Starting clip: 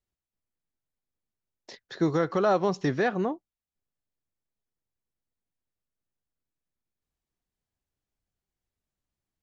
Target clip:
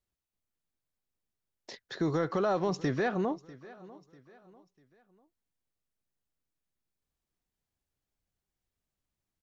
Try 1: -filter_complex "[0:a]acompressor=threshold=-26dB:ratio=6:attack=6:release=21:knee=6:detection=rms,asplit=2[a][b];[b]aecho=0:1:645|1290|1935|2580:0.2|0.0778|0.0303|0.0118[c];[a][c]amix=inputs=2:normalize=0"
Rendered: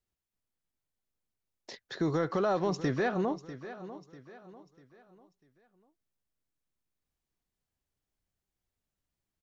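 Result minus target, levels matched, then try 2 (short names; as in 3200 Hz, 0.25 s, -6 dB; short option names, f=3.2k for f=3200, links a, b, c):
echo-to-direct +6 dB
-filter_complex "[0:a]acompressor=threshold=-26dB:ratio=6:attack=6:release=21:knee=6:detection=rms,asplit=2[a][b];[b]aecho=0:1:645|1290|1935:0.1|0.039|0.0152[c];[a][c]amix=inputs=2:normalize=0"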